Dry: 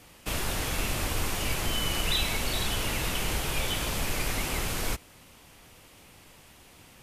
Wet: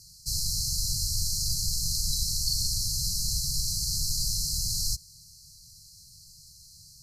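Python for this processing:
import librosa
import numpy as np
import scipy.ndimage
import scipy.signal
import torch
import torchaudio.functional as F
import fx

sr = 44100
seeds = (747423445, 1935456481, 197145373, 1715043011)

y = fx.brickwall_bandstop(x, sr, low_hz=180.0, high_hz=4000.0)
y = fx.peak_eq(y, sr, hz=5000.0, db=11.0, octaves=1.5)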